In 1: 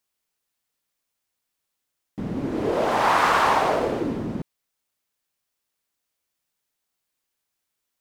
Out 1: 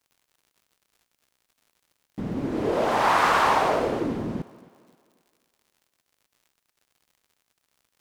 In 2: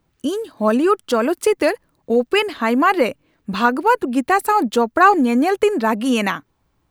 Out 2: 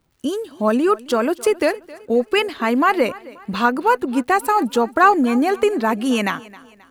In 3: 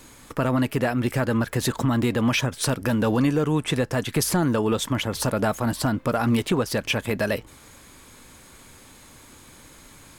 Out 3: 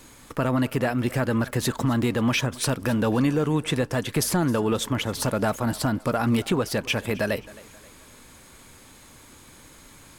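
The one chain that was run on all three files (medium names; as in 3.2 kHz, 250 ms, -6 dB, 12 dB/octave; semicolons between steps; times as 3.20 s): crackle 120 per s -49 dBFS; thinning echo 266 ms, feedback 43%, high-pass 160 Hz, level -20 dB; trim -1 dB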